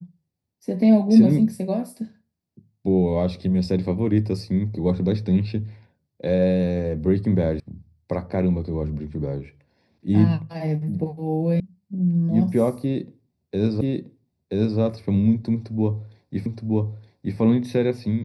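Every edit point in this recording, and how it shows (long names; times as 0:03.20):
0:07.60: cut off before it has died away
0:11.60: cut off before it has died away
0:13.81: the same again, the last 0.98 s
0:16.46: the same again, the last 0.92 s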